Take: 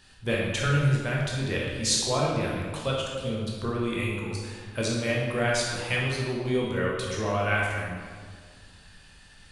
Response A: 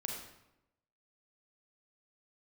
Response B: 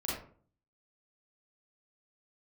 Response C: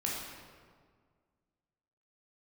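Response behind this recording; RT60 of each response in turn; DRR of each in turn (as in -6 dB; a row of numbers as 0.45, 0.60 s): C; 0.90, 0.45, 1.8 s; 0.0, -6.5, -4.0 dB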